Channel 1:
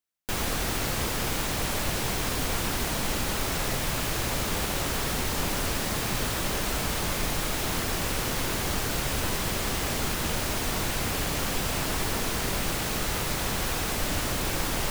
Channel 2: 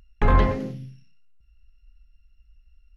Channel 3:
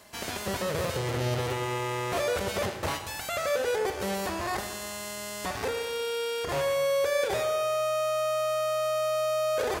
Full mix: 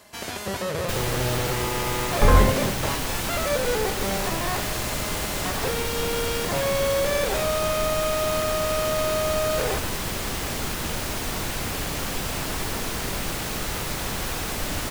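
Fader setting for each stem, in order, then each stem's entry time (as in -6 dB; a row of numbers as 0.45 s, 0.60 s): 0.0 dB, +1.5 dB, +2.0 dB; 0.60 s, 2.00 s, 0.00 s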